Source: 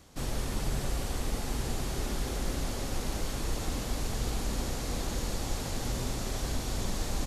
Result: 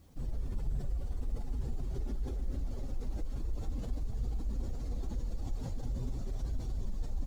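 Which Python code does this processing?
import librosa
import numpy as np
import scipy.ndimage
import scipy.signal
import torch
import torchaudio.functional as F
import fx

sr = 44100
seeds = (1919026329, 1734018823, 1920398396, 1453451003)

y = fx.spec_expand(x, sr, power=1.8)
y = fx.quant_dither(y, sr, seeds[0], bits=12, dither='triangular')
y = y * 10.0 ** (-2.0 / 20.0)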